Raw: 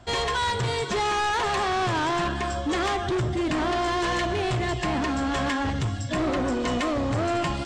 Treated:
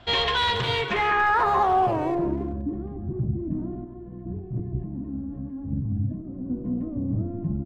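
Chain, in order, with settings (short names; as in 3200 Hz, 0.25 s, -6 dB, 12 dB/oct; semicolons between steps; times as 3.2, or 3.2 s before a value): notches 60/120/180/240/300/360/420 Hz; 3.84–6.5 negative-ratio compressor -29 dBFS, ratio -0.5; low-pass sweep 3400 Hz -> 200 Hz, 0.69–2.76; speakerphone echo 0.28 s, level -11 dB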